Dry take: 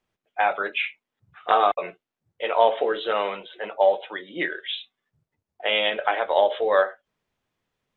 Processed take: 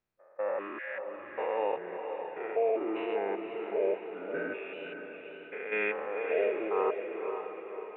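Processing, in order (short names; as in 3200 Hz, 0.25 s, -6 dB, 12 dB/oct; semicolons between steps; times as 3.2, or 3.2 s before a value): stepped spectrum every 0.2 s; formant shift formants -5 st; diffused feedback echo 0.544 s, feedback 50%, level -6.5 dB; gain -6.5 dB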